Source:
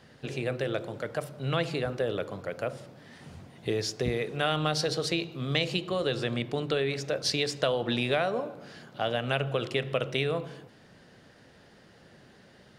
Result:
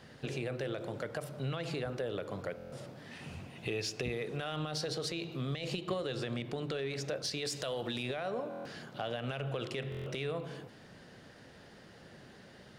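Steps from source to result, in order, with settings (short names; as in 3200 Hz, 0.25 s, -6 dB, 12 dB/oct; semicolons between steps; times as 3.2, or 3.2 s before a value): 7.45–8.03 high shelf 4600 Hz +12 dB; limiter -21.5 dBFS, peak gain reduction 10.5 dB; compressor 2.5:1, threshold -36 dBFS, peak gain reduction 7 dB; soft clip -24.5 dBFS, distortion -26 dB; 3.11–4.12 bell 2600 Hz +12 dB 0.28 oct; 5.52–5.94 transient shaper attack +6 dB, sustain -6 dB; stuck buffer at 2.56/8.49/9.9, samples 1024, times 6; gain +1 dB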